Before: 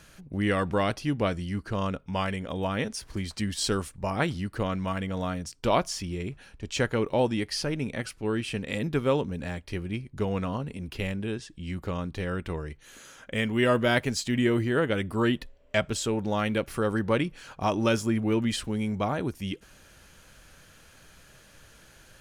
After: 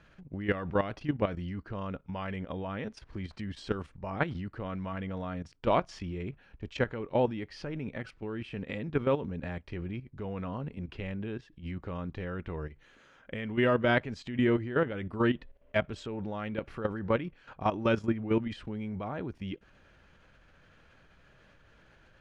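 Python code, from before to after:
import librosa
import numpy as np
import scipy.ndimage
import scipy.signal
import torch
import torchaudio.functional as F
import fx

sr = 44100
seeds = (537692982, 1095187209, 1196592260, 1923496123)

y = scipy.signal.sosfilt(scipy.signal.butter(2, 2600.0, 'lowpass', fs=sr, output='sos'), x)
y = fx.level_steps(y, sr, step_db=12)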